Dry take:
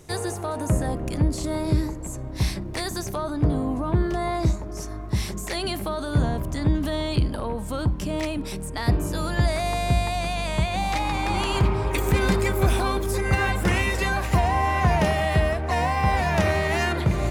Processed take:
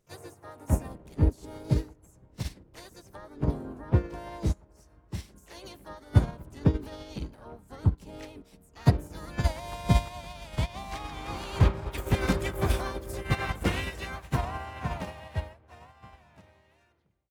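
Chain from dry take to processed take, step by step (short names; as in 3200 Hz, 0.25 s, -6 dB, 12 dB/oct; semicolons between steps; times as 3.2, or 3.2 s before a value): ending faded out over 3.59 s; harmoniser -3 st -8 dB, +5 st -7 dB, +7 st -8 dB; upward expander 2.5:1, over -31 dBFS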